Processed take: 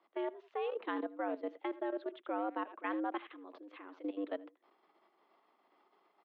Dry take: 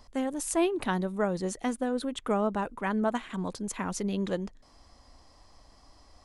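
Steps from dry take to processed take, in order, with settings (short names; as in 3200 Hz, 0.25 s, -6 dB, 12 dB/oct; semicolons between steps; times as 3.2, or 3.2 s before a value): speakerphone echo 80 ms, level -12 dB; level quantiser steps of 15 dB; mistuned SSB +100 Hz 160–3300 Hz; gain -5.5 dB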